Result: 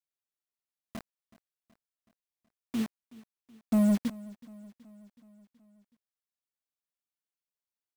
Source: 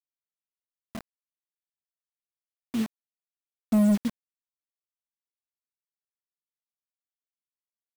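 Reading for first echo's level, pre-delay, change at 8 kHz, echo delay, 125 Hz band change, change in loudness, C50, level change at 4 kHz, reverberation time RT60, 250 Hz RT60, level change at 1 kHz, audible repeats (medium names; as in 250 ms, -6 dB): -21.0 dB, no reverb, -3.0 dB, 374 ms, no reading, -3.0 dB, no reverb, -3.0 dB, no reverb, no reverb, -3.0 dB, 4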